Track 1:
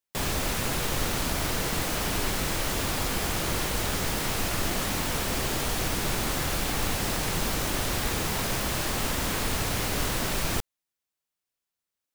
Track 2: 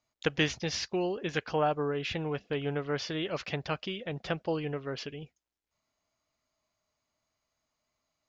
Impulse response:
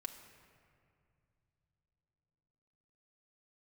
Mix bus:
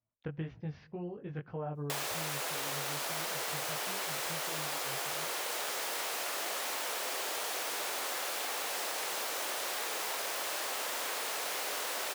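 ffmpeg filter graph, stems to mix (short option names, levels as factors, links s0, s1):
-filter_complex "[0:a]highpass=f=480:w=0.5412,highpass=f=480:w=1.3066,adelay=1750,volume=1.41[s0];[1:a]lowpass=1500,flanger=delay=17.5:depth=3.6:speed=1.9,volume=0.335,asplit=2[s1][s2];[s2]volume=0.168[s3];[2:a]atrim=start_sample=2205[s4];[s3][s4]afir=irnorm=-1:irlink=0[s5];[s0][s1][s5]amix=inputs=3:normalize=0,equalizer=f=130:t=o:w=1.3:g=13,acompressor=threshold=0.0224:ratio=10"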